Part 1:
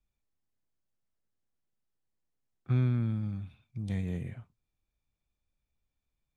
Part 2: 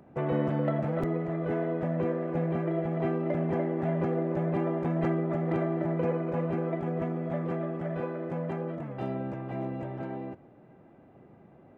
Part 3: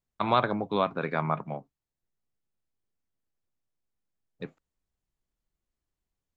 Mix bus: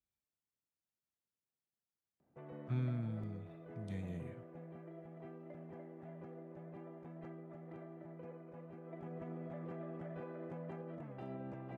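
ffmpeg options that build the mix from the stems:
ffmpeg -i stem1.wav -i stem2.wav -filter_complex "[0:a]highpass=85,volume=-9dB[link_01];[1:a]adelay=2200,volume=-11dB,afade=type=in:start_time=8.83:duration=0.42:silence=0.266073,alimiter=level_in=14dB:limit=-24dB:level=0:latency=1:release=94,volume=-14dB,volume=0dB[link_02];[link_01][link_02]amix=inputs=2:normalize=0" out.wav

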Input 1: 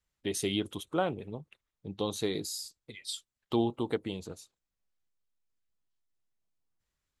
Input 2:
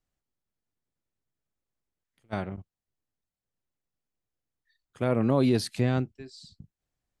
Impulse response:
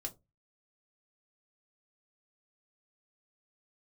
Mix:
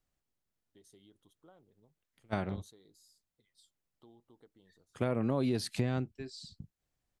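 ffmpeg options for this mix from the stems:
-filter_complex "[0:a]acompressor=threshold=-33dB:ratio=2,equalizer=frequency=2500:width=4.1:gain=-14,adelay=500,volume=-15.5dB[link_01];[1:a]volume=0.5dB,asplit=2[link_02][link_03];[link_03]apad=whole_len=339600[link_04];[link_01][link_04]sidechaingate=range=-11dB:threshold=-51dB:ratio=16:detection=peak[link_05];[link_05][link_02]amix=inputs=2:normalize=0,acompressor=threshold=-28dB:ratio=4"

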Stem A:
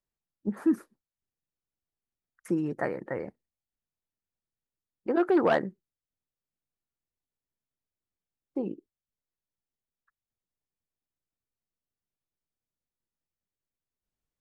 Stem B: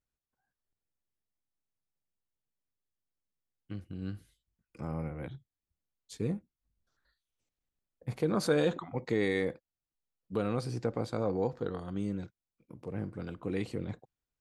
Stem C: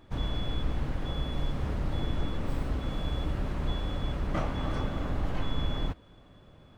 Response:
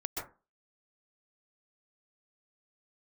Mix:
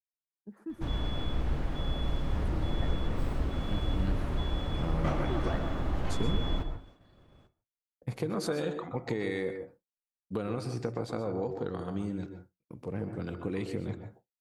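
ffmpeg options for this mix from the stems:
-filter_complex "[0:a]volume=-18.5dB,asplit=2[link_01][link_02];[link_02]volume=-7dB[link_03];[1:a]acompressor=threshold=-33dB:ratio=6,volume=0.5dB,asplit=2[link_04][link_05];[link_05]volume=-5.5dB[link_06];[2:a]adelay=700,volume=-4.5dB,asplit=2[link_07][link_08];[link_08]volume=-5dB[link_09];[3:a]atrim=start_sample=2205[link_10];[link_03][link_06][link_09]amix=inputs=3:normalize=0[link_11];[link_11][link_10]afir=irnorm=-1:irlink=0[link_12];[link_01][link_04][link_07][link_12]amix=inputs=4:normalize=0,agate=range=-33dB:threshold=-49dB:ratio=3:detection=peak"

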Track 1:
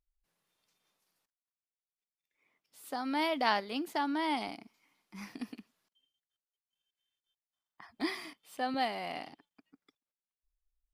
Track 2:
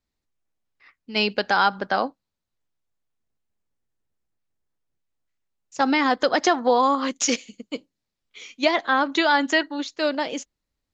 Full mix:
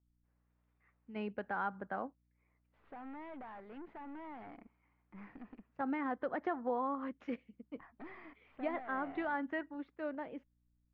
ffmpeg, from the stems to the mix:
ffmpeg -i stem1.wav -i stem2.wav -filter_complex "[0:a]acompressor=threshold=-35dB:ratio=3,aeval=exprs='(tanh(178*val(0)+0.45)-tanh(0.45))/178':channel_layout=same,aeval=exprs='val(0)+0.000178*(sin(2*PI*60*n/s)+sin(2*PI*2*60*n/s)/2+sin(2*PI*3*60*n/s)/3+sin(2*PI*4*60*n/s)/4+sin(2*PI*5*60*n/s)/5)':channel_layout=same,volume=-1dB[link_01];[1:a]equalizer=frequency=90:width_type=o:width=2.6:gain=9.5,volume=-18dB[link_02];[link_01][link_02]amix=inputs=2:normalize=0,lowpass=frequency=2000:width=0.5412,lowpass=frequency=2000:width=1.3066" out.wav

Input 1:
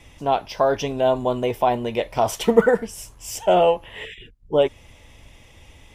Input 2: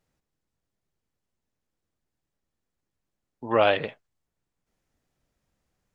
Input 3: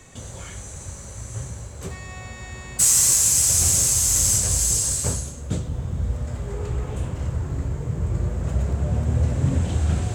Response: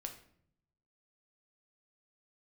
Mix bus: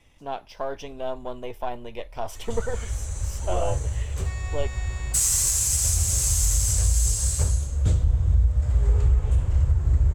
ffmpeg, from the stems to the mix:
-filter_complex "[0:a]aeval=exprs='if(lt(val(0),0),0.708*val(0),val(0))':channel_layout=same,volume=-10.5dB[link_01];[1:a]lowpass=frequency=1100:width=0.5412,lowpass=frequency=1100:width=1.3066,volume=-9dB[link_02];[2:a]adelay=2350,volume=-1dB[link_03];[link_01][link_02][link_03]amix=inputs=3:normalize=0,asubboost=boost=12:cutoff=57,alimiter=limit=-11.5dB:level=0:latency=1:release=387"

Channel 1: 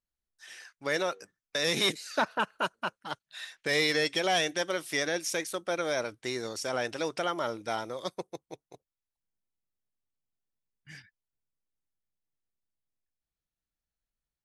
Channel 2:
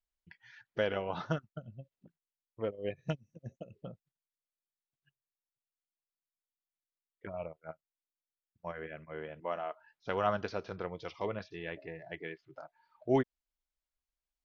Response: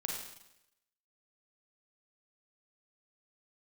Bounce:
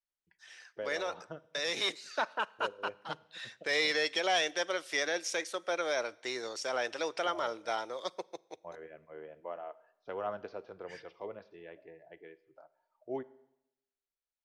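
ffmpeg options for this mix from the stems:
-filter_complex "[0:a]volume=-5.5dB,asplit=2[link_01][link_02];[link_02]volume=-23dB[link_03];[1:a]tiltshelf=frequency=830:gain=7,volume=-10.5dB,asplit=2[link_04][link_05];[link_05]volume=-16.5dB[link_06];[2:a]atrim=start_sample=2205[link_07];[link_03][link_06]amix=inputs=2:normalize=0[link_08];[link_08][link_07]afir=irnorm=-1:irlink=0[link_09];[link_01][link_04][link_09]amix=inputs=3:normalize=0,acrossover=split=340 7800:gain=0.141 1 0.112[link_10][link_11][link_12];[link_10][link_11][link_12]amix=inputs=3:normalize=0,dynaudnorm=framelen=310:gausssize=21:maxgain=4dB"

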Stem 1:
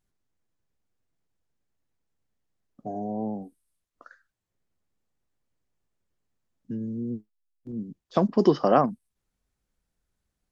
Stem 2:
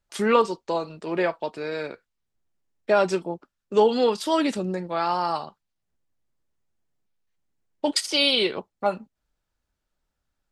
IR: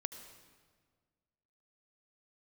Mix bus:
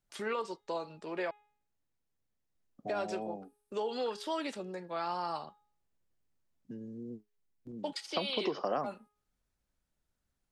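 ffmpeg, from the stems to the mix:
-filter_complex "[0:a]volume=-4.5dB[link_01];[1:a]alimiter=limit=-13.5dB:level=0:latency=1:release=103,volume=-9dB,asplit=3[link_02][link_03][link_04];[link_02]atrim=end=1.31,asetpts=PTS-STARTPTS,afade=type=out:start_time=1.306:duration=0.004:curve=hsin[link_05];[link_03]atrim=start=1.31:end=2.55,asetpts=PTS-STARTPTS,volume=0[link_06];[link_04]atrim=start=2.55,asetpts=PTS-STARTPTS,afade=type=in:duration=0.004:curve=hsin[link_07];[link_05][link_06][link_07]concat=n=3:v=0:a=1[link_08];[link_01][link_08]amix=inputs=2:normalize=0,bandreject=frequency=416.3:width_type=h:width=4,bandreject=frequency=832.6:width_type=h:width=4,bandreject=frequency=1248.9:width_type=h:width=4,bandreject=frequency=1665.2:width_type=h:width=4,bandreject=frequency=2081.5:width_type=h:width=4,bandreject=frequency=2497.8:width_type=h:width=4,bandreject=frequency=2914.1:width_type=h:width=4,bandreject=frequency=3330.4:width_type=h:width=4,bandreject=frequency=3746.7:width_type=h:width=4,acrossover=split=370|4600[link_09][link_10][link_11];[link_09]acompressor=threshold=-48dB:ratio=4[link_12];[link_10]acompressor=threshold=-31dB:ratio=4[link_13];[link_11]acompressor=threshold=-53dB:ratio=4[link_14];[link_12][link_13][link_14]amix=inputs=3:normalize=0"

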